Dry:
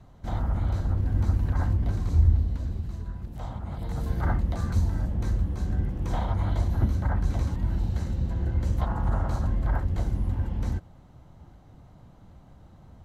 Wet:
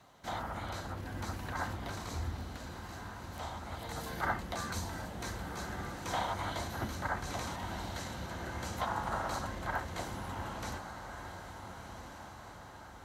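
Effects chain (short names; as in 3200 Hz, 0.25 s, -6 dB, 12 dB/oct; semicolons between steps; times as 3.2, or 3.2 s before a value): HPF 1400 Hz 6 dB/oct; diffused feedback echo 1.446 s, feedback 52%, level -8 dB; gain +6 dB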